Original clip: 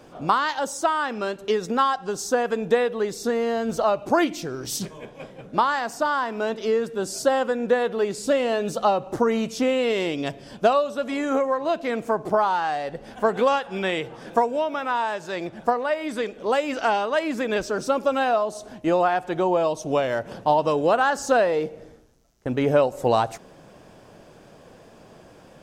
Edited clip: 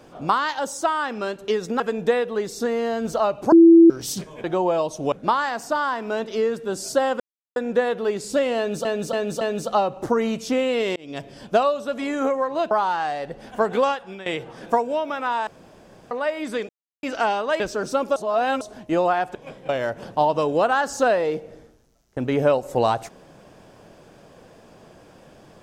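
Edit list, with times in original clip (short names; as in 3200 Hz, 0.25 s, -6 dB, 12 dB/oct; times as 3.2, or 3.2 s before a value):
1.8–2.44 cut
4.16–4.54 bleep 333 Hz -6.5 dBFS
5.08–5.42 swap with 19.3–19.98
7.5 insert silence 0.36 s
8.51–8.79 loop, 4 plays
10.06–10.39 fade in
11.81–12.35 cut
13.49–13.9 fade out, to -17.5 dB
15.11–15.75 room tone
16.33–16.67 mute
17.24–17.55 cut
18.11–18.56 reverse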